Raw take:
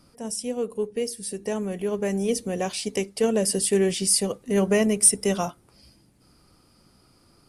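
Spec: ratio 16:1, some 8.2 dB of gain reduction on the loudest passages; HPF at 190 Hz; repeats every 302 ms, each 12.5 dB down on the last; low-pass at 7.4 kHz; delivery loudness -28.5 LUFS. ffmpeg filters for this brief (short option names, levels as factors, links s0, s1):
-af "highpass=190,lowpass=7400,acompressor=threshold=0.0562:ratio=16,aecho=1:1:302|604|906:0.237|0.0569|0.0137,volume=1.26"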